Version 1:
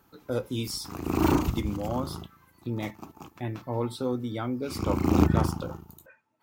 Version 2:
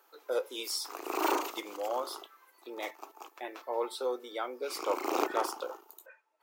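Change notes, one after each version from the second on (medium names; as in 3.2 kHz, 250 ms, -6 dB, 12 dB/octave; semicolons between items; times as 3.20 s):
master: add steep high-pass 400 Hz 36 dB/octave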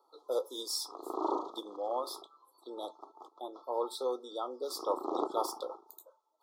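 background: add tape spacing loss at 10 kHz 35 dB; master: add Chebyshev band-stop 1.3–3.4 kHz, order 5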